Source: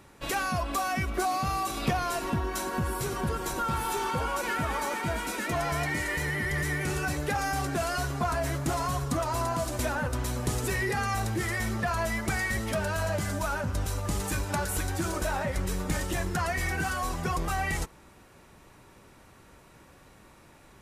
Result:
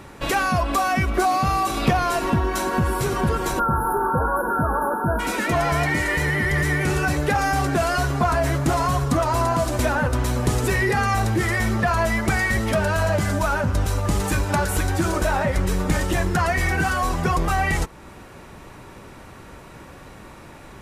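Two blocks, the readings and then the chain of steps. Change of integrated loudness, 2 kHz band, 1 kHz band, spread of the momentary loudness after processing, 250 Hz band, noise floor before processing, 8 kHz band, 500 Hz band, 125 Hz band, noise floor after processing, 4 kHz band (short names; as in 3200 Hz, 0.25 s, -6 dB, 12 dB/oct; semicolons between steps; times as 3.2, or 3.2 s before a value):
+8.5 dB, +8.0 dB, +8.5 dB, 2 LU, +9.0 dB, -55 dBFS, +4.0 dB, +9.0 dB, +9.0 dB, -43 dBFS, +5.5 dB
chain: spectral delete 3.59–5.2, 1700–9900 Hz; high shelf 4000 Hz -6 dB; in parallel at -1 dB: compressor, threshold -42 dBFS, peak gain reduction 18.5 dB; on the sum: gain +7.5 dB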